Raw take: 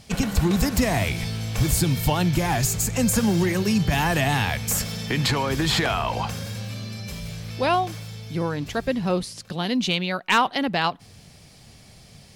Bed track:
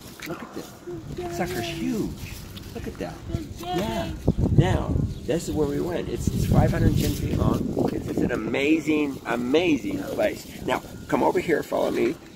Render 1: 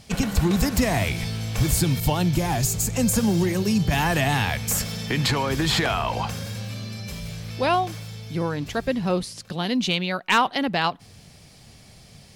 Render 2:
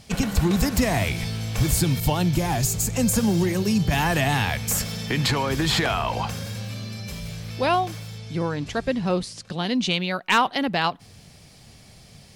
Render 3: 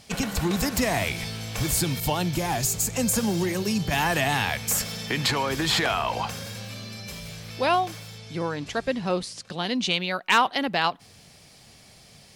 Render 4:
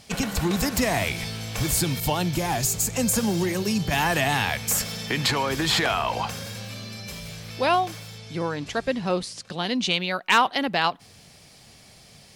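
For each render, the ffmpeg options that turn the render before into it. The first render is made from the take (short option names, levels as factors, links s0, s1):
-filter_complex "[0:a]asettb=1/sr,asplit=3[s0][s1][s2];[s0]atrim=end=2.004[s3];[s1]atrim=start=2:end=3.91,asetpts=PTS-STARTPTS,afade=t=in:d=0.004:c=qsin,afade=t=out:st=1.906:d=0.004:c=qsin,adynamicequalizer=threshold=0.01:dfrequency=1700:dqfactor=0.88:tfrequency=1700:tqfactor=0.88:attack=5:release=100:ratio=0.375:range=3:mode=cutabove:tftype=bell[s4];[s2]atrim=start=3.906[s5];[s3][s4]acrossfade=d=0.004:c1=hsin:c2=qsin[s6];[s6][s5]acrossfade=d=0.004:c1=qsin:c2=hsin"
-filter_complex "[0:a]asettb=1/sr,asplit=3[s0][s1][s2];[s0]atrim=end=8.184[s3];[s1]atrim=start=8.18:end=9.95,asetpts=PTS-STARTPTS,afade=t=in:d=0.004:c=qsin,afade=t=out:st=1.766:d=0.004:c=qsin,lowpass=f=9900:w=0.5412,lowpass=f=9900:w=1.3066[s4];[s2]atrim=start=9.946[s5];[s3][s4]acrossfade=d=0.004:c1=hsin:c2=qsin[s6];[s6][s5]acrossfade=d=0.004:c1=qsin:c2=hsin"
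-af "lowshelf=f=220:g=-9"
-af "volume=1.12"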